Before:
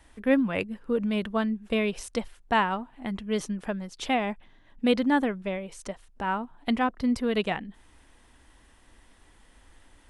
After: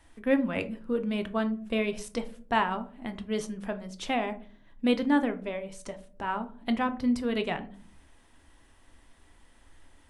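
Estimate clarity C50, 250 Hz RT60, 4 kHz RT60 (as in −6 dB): 15.5 dB, 0.65 s, 0.25 s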